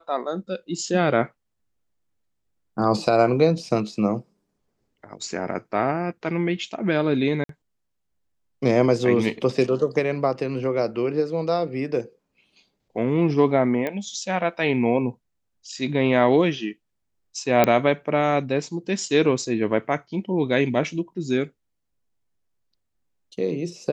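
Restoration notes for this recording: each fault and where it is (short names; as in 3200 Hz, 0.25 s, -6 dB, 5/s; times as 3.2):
7.44–7.49 gap 53 ms
13.87 pop -15 dBFS
17.64 pop -4 dBFS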